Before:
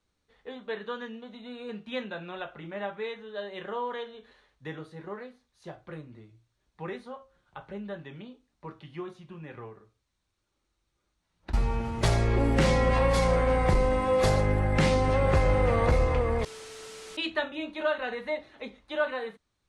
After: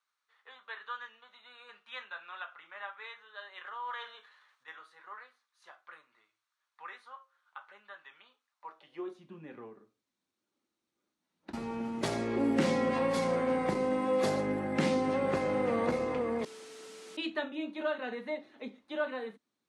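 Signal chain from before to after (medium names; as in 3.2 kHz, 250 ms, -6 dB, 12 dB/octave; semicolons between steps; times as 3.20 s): high-pass sweep 1.2 kHz -> 240 Hz, 8.51–9.27 s; 3.66–4.68 s: transient shaper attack -8 dB, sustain +8 dB; trim -6.5 dB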